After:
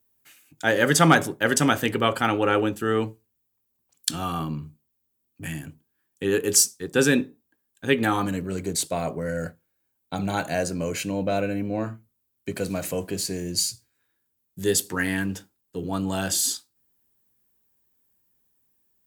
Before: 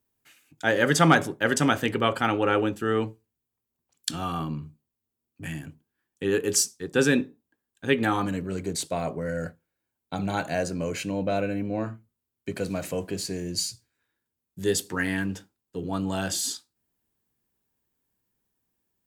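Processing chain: high shelf 9200 Hz +10 dB; gain +1.5 dB

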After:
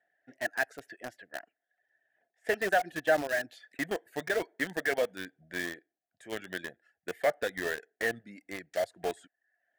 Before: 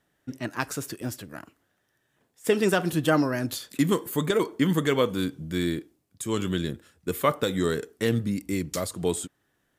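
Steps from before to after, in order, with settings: reverb removal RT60 0.57 s; double band-pass 1100 Hz, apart 1.3 oct; in parallel at -11.5 dB: companded quantiser 2-bit; on the sum: gain +4 dB

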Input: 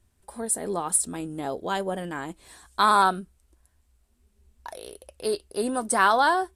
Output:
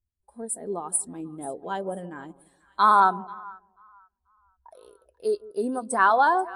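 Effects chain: split-band echo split 1100 Hz, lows 0.164 s, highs 0.487 s, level -13 dB; 3–4.71 low-pass opened by the level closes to 860 Hz, open at -17.5 dBFS; spectral expander 1.5:1

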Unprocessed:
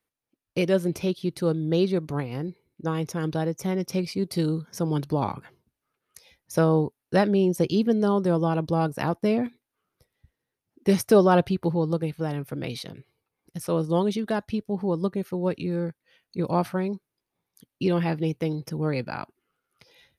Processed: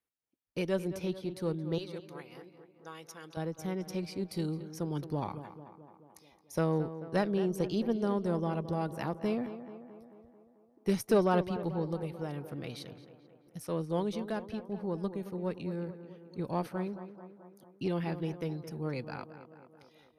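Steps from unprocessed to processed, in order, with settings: 1.78–3.37 HPF 1400 Hz 6 dB/oct; added harmonics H 3 -26 dB, 4 -26 dB, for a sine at -8 dBFS; tape echo 0.219 s, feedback 67%, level -11 dB, low-pass 2200 Hz; gain -8 dB

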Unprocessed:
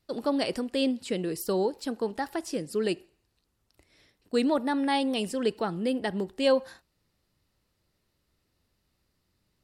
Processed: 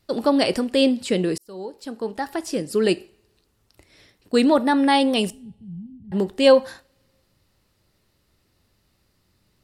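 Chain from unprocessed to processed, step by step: 5.3–6.12 inverse Chebyshev low-pass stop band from 500 Hz, stop band 60 dB; two-slope reverb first 0.33 s, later 1.5 s, from -27 dB, DRR 15.5 dB; 1.38–2.87 fade in; gain +8.5 dB

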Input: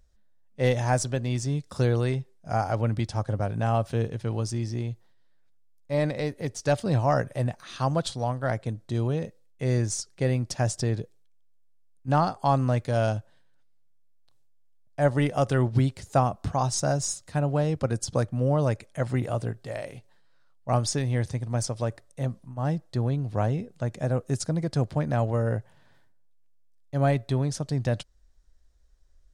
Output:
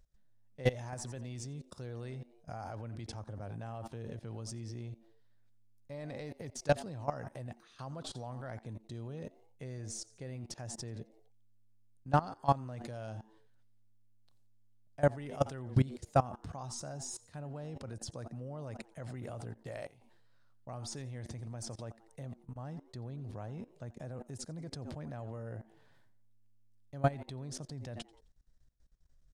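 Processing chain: frequency-shifting echo 87 ms, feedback 31%, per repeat +110 Hz, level -18.5 dB; level quantiser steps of 20 dB; gain -2.5 dB

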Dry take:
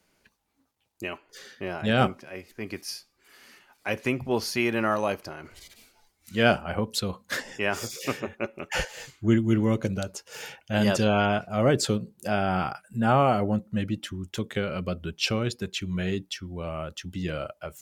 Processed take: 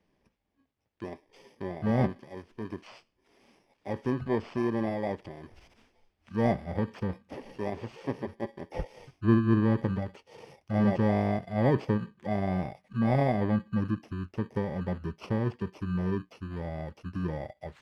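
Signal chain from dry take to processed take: FFT order left unsorted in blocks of 32 samples; de-esser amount 70%; LPF 2600 Hz 12 dB/oct

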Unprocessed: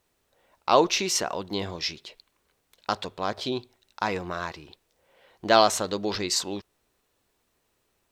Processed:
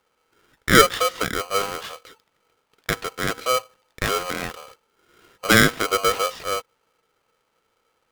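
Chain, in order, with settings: LPF 2800 Hz 24 dB/oct; bell 410 Hz +10 dB 0.49 oct; polarity switched at an audio rate 890 Hz; gain +2 dB

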